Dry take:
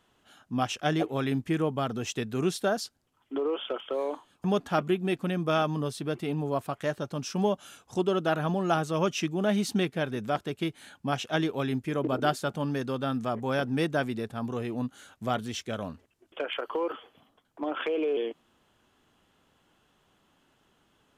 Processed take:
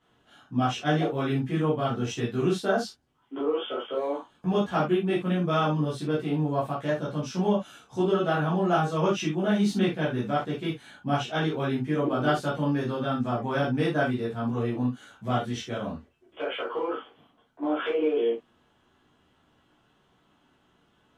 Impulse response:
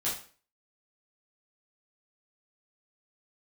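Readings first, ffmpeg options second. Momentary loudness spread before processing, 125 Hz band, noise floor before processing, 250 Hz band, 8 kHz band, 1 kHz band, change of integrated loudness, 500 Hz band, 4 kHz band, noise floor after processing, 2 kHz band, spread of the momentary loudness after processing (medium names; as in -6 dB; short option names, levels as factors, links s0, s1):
8 LU, +4.0 dB, -69 dBFS, +3.0 dB, -3.5 dB, +2.5 dB, +2.5 dB, +2.0 dB, 0.0 dB, -66 dBFS, +1.5 dB, 8 LU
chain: -filter_complex "[0:a]lowpass=f=3300:p=1[s0];[1:a]atrim=start_sample=2205,atrim=end_sample=3969[s1];[s0][s1]afir=irnorm=-1:irlink=0,volume=0.708"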